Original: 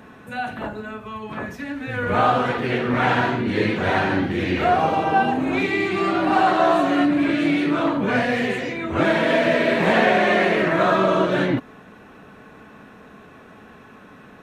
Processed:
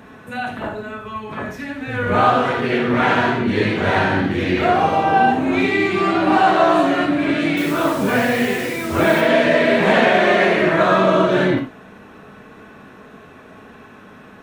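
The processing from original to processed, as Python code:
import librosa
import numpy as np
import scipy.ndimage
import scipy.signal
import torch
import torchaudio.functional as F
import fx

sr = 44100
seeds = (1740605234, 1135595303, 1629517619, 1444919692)

y = fx.quant_dither(x, sr, seeds[0], bits=6, dither='none', at=(7.57, 9.21))
y = fx.rev_gated(y, sr, seeds[1], gate_ms=110, shape='flat', drr_db=4.5)
y = y * 10.0 ** (2.0 / 20.0)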